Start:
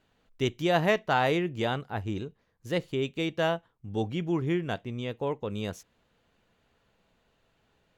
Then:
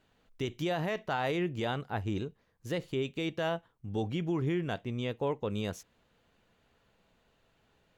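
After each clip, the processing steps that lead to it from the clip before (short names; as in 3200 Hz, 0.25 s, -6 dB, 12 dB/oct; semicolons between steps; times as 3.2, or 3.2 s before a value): limiter -22.5 dBFS, peak gain reduction 12 dB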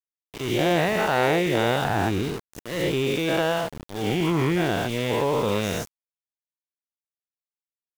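spectral dilation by 0.24 s; auto swell 0.265 s; sample gate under -35.5 dBFS; gain +4.5 dB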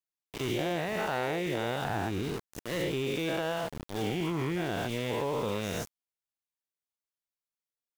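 compressor, threshold -26 dBFS, peak gain reduction 9 dB; gain -2 dB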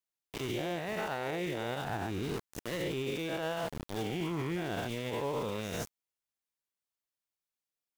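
limiter -26 dBFS, peak gain reduction 7.5 dB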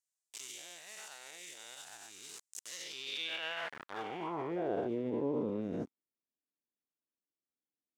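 band-pass sweep 7500 Hz -> 280 Hz, 2.64–5.11; gain +8 dB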